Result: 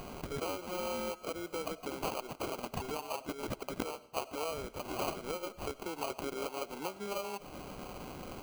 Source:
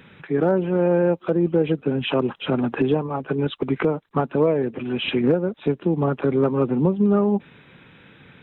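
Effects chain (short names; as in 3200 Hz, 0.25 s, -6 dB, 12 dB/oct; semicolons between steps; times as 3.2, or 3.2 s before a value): HPF 1200 Hz 12 dB/oct; compressor 3:1, threshold -48 dBFS, peak gain reduction 18 dB; sample-rate reducer 1800 Hz, jitter 0%; on a send: reverb RT60 0.55 s, pre-delay 50 ms, DRR 17.5 dB; on the sum: gain +9 dB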